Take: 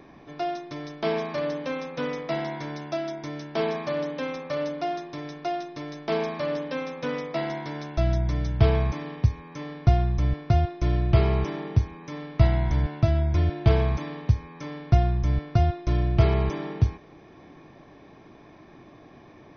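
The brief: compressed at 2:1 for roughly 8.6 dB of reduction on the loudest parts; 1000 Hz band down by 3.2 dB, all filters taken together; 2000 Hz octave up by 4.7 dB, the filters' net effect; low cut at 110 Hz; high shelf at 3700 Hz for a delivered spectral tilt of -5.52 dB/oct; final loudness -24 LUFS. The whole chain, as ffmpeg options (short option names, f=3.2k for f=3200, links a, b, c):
-af "highpass=110,equalizer=f=1k:t=o:g=-7,equalizer=f=2k:t=o:g=8.5,highshelf=f=3.7k:g=-4,acompressor=threshold=-33dB:ratio=2,volume=11dB"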